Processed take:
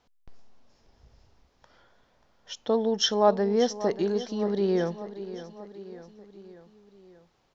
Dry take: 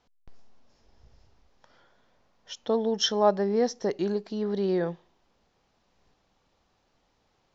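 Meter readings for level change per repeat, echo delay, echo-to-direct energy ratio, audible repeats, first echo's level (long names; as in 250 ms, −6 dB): −5.0 dB, 586 ms, −12.5 dB, 4, −14.0 dB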